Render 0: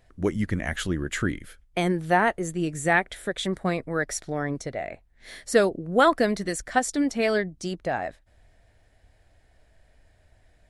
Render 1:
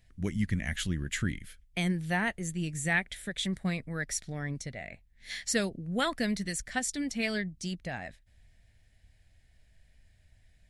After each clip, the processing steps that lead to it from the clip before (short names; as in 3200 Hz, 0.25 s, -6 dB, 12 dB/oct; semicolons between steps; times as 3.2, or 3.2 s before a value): spectral gain 5.3–5.52, 680–7800 Hz +8 dB; band shelf 650 Hz -11.5 dB 2.6 oct; gain -2 dB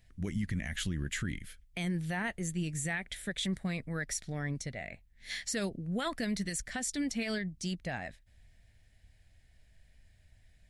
limiter -25 dBFS, peak gain reduction 10.5 dB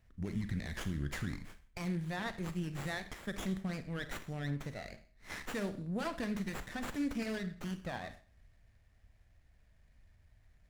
Schroeder reverb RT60 0.47 s, combs from 28 ms, DRR 9.5 dB; running maximum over 9 samples; gain -2.5 dB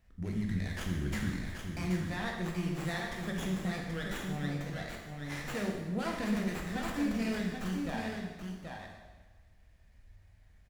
echo 0.779 s -5.5 dB; plate-style reverb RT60 1.3 s, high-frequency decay 0.95×, DRR 0.5 dB